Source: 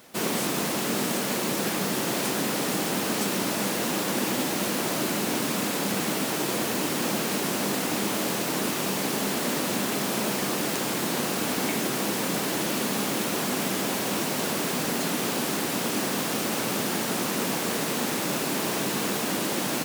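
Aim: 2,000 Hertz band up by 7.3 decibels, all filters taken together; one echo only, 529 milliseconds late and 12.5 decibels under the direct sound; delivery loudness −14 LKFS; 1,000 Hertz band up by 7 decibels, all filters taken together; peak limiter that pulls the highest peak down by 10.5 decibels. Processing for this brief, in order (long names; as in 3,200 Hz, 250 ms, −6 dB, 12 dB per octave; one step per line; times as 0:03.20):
parametric band 1,000 Hz +7 dB
parametric band 2,000 Hz +7 dB
brickwall limiter −21 dBFS
single-tap delay 529 ms −12.5 dB
level +15 dB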